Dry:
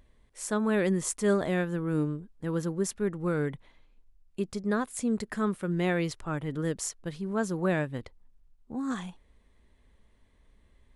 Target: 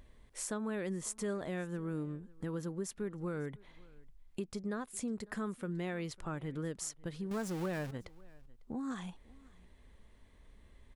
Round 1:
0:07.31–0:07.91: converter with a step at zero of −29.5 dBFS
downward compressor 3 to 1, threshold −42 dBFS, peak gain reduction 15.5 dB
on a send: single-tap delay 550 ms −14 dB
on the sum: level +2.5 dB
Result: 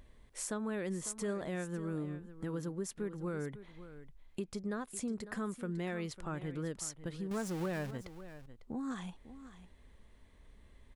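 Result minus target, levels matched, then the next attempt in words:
echo-to-direct +10 dB
0:07.31–0:07.91: converter with a step at zero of −29.5 dBFS
downward compressor 3 to 1, threshold −42 dBFS, peak gain reduction 15.5 dB
on a send: single-tap delay 550 ms −24 dB
on the sum: level +2.5 dB

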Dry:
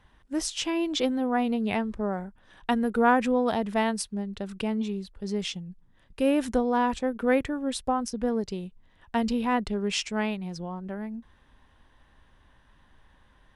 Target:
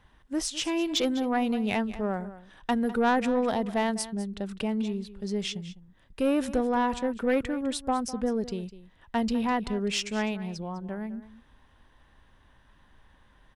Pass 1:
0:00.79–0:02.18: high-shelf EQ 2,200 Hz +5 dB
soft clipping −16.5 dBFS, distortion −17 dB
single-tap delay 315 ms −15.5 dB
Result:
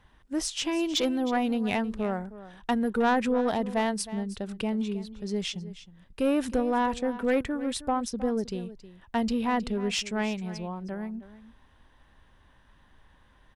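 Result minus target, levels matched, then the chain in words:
echo 112 ms late
0:00.79–0:02.18: high-shelf EQ 2,200 Hz +5 dB
soft clipping −16.5 dBFS, distortion −17 dB
single-tap delay 203 ms −15.5 dB

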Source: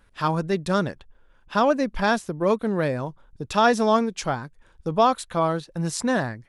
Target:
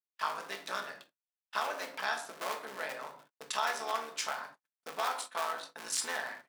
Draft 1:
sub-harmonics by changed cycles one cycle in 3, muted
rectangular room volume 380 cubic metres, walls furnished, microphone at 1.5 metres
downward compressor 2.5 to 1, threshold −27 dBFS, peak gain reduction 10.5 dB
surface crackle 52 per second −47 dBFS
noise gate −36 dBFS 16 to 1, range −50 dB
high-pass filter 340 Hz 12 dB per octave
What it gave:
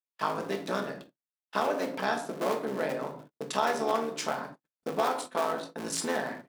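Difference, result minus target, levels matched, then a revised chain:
250 Hz band +14.0 dB
sub-harmonics by changed cycles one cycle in 3, muted
rectangular room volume 380 cubic metres, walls furnished, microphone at 1.5 metres
downward compressor 2.5 to 1, threshold −27 dBFS, peak gain reduction 10.5 dB
surface crackle 52 per second −47 dBFS
noise gate −36 dBFS 16 to 1, range −50 dB
high-pass filter 1,100 Hz 12 dB per octave

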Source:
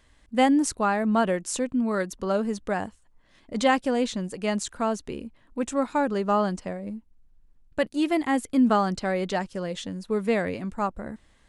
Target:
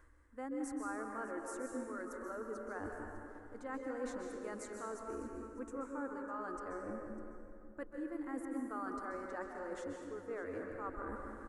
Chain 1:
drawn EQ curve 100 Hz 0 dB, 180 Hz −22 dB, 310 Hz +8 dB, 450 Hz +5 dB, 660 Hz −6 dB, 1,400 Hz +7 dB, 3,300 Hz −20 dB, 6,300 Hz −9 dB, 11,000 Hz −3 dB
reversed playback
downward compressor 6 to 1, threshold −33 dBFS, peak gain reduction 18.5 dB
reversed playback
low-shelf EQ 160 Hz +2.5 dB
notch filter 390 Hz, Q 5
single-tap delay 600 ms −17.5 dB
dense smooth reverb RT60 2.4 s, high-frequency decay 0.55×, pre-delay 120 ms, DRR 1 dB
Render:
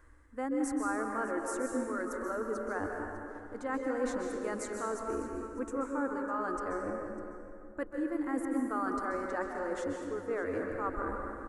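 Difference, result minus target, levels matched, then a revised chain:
downward compressor: peak gain reduction −8.5 dB
drawn EQ curve 100 Hz 0 dB, 180 Hz −22 dB, 310 Hz +8 dB, 450 Hz +5 dB, 660 Hz −6 dB, 1,400 Hz +7 dB, 3,300 Hz −20 dB, 6,300 Hz −9 dB, 11,000 Hz −3 dB
reversed playback
downward compressor 6 to 1, threshold −43 dBFS, peak gain reduction 27 dB
reversed playback
low-shelf EQ 160 Hz +2.5 dB
notch filter 390 Hz, Q 5
single-tap delay 600 ms −17.5 dB
dense smooth reverb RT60 2.4 s, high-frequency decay 0.55×, pre-delay 120 ms, DRR 1 dB

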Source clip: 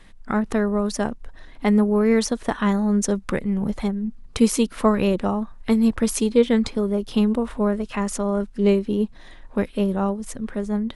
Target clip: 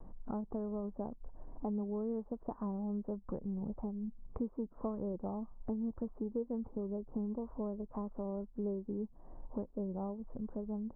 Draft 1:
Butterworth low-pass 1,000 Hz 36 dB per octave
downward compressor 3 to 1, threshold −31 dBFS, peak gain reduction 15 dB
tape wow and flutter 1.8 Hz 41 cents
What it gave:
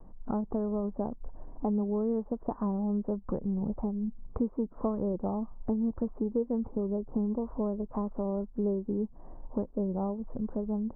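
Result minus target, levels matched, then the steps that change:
downward compressor: peak gain reduction −7.5 dB
change: downward compressor 3 to 1, threshold −42.5 dBFS, peak gain reduction 22.5 dB

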